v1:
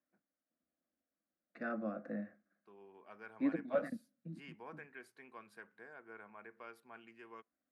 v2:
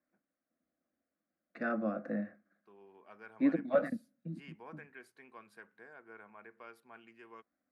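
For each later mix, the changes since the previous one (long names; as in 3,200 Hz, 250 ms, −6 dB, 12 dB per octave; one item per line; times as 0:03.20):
second voice +5.5 dB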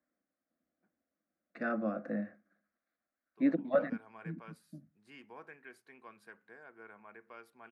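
first voice: entry +0.70 s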